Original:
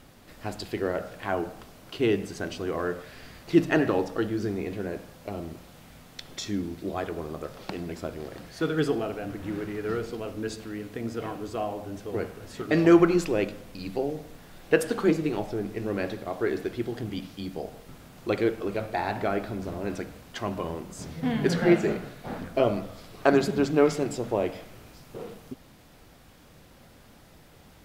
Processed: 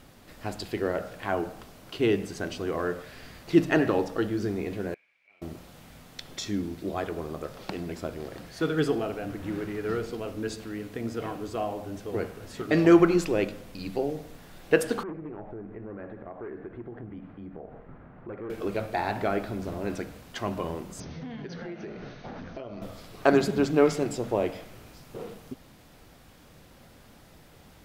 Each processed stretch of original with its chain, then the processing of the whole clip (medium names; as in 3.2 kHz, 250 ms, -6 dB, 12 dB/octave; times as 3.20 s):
4.94–5.42 s: band-pass filter 2.3 kHz, Q 14 + compressor with a negative ratio -56 dBFS, ratio -0.5
15.03–18.50 s: hard clipper -22.5 dBFS + compression 3:1, threshold -39 dBFS + low-pass 1.8 kHz 24 dB/octave
21.00–22.82 s: compression 10:1, threshold -35 dBFS + brick-wall FIR low-pass 6.5 kHz
whole clip: none